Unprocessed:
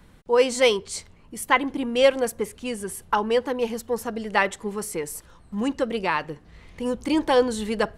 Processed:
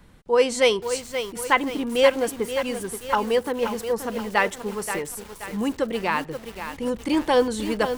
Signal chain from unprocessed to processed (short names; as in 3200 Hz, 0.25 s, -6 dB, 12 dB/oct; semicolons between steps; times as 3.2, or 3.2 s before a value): lo-fi delay 0.528 s, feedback 55%, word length 6-bit, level -8.5 dB